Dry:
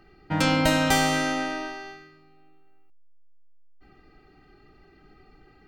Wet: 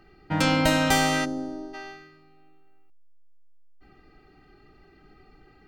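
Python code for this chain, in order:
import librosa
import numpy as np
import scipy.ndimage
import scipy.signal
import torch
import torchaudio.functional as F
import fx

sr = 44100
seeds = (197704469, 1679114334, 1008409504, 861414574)

y = fx.curve_eq(x, sr, hz=(410.0, 2500.0, 4600.0), db=(0, -30, -14), at=(1.24, 1.73), fade=0.02)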